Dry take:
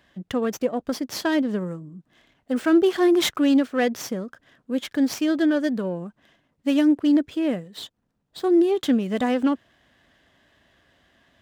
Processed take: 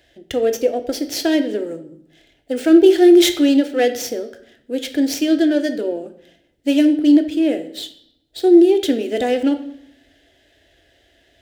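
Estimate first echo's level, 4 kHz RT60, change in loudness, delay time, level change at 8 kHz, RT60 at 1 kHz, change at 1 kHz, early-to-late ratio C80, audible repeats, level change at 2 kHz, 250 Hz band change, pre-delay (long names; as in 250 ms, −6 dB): no echo audible, 0.65 s, +6.5 dB, no echo audible, +7.0 dB, 0.75 s, +2.0 dB, 15.5 dB, no echo audible, +2.5 dB, +5.5 dB, 3 ms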